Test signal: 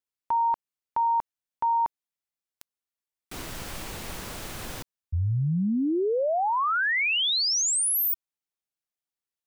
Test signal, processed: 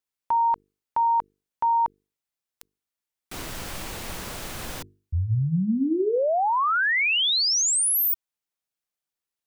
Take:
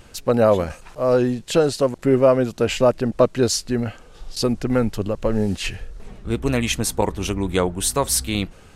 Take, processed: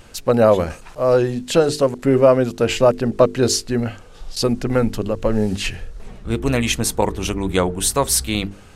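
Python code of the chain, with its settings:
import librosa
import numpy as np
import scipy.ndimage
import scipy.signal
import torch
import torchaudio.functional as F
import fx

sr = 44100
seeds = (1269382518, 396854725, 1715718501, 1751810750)

y = fx.hum_notches(x, sr, base_hz=50, count=9)
y = F.gain(torch.from_numpy(y), 2.5).numpy()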